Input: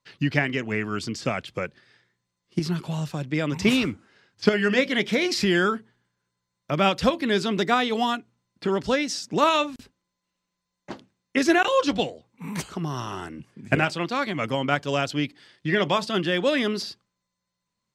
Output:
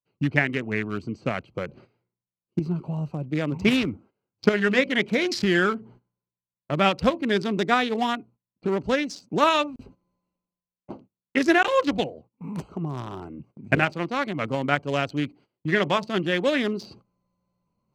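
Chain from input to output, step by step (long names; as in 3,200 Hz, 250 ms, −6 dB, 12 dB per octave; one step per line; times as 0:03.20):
adaptive Wiener filter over 25 samples
dynamic equaliser 1,900 Hz, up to +4 dB, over −37 dBFS, Q 1.7
reversed playback
upward compression, threshold −38 dBFS
reversed playback
noise gate −49 dBFS, range −16 dB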